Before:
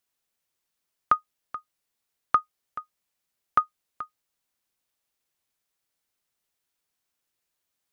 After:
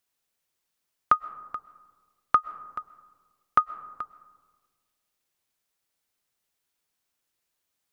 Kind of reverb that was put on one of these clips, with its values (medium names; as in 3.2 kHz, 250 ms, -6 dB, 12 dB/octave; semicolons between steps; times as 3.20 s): algorithmic reverb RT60 1.6 s, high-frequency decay 0.3×, pre-delay 85 ms, DRR 17.5 dB; trim +1 dB